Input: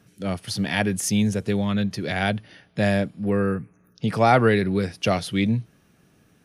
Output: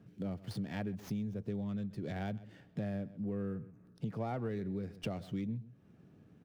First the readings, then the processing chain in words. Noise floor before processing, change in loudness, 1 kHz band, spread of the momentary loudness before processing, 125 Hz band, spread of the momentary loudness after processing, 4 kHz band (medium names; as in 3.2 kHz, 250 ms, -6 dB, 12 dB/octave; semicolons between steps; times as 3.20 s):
-60 dBFS, -16.5 dB, -22.5 dB, 11 LU, -14.0 dB, 6 LU, -23.0 dB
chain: median filter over 5 samples; tilt shelf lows +7 dB, about 710 Hz; on a send: delay 130 ms -21.5 dB; on the sum: compression 5:1, threshold -31 dBFS, peak gain reduction 18.5 dB; high-pass 73 Hz; sliding maximum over 3 samples; trim -6 dB